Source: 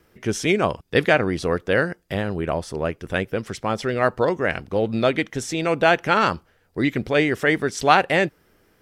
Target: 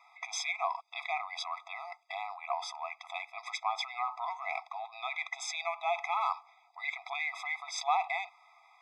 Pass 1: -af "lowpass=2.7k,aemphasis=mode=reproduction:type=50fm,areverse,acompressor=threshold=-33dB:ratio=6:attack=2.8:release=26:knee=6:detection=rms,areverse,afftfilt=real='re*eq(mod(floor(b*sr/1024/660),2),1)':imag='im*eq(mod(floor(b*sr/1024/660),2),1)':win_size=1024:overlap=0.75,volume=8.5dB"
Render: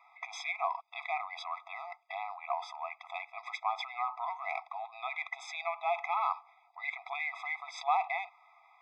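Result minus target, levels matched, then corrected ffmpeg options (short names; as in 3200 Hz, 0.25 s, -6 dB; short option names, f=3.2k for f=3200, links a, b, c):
8000 Hz band -10.5 dB
-af "lowpass=5.9k,aemphasis=mode=reproduction:type=50fm,areverse,acompressor=threshold=-33dB:ratio=6:attack=2.8:release=26:knee=6:detection=rms,areverse,afftfilt=real='re*eq(mod(floor(b*sr/1024/660),2),1)':imag='im*eq(mod(floor(b*sr/1024/660),2),1)':win_size=1024:overlap=0.75,volume=8.5dB"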